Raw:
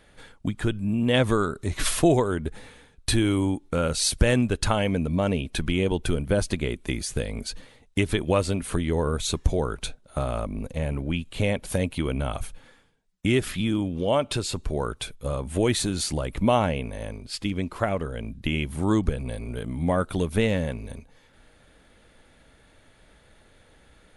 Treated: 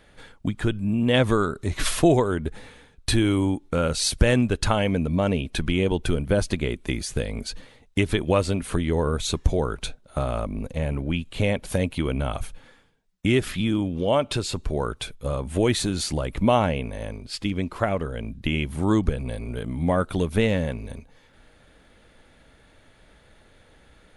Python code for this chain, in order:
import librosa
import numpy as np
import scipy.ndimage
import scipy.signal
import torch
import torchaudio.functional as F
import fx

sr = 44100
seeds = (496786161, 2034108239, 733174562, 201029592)

y = fx.peak_eq(x, sr, hz=10000.0, db=-3.5, octaves=1.1)
y = y * 10.0 ** (1.5 / 20.0)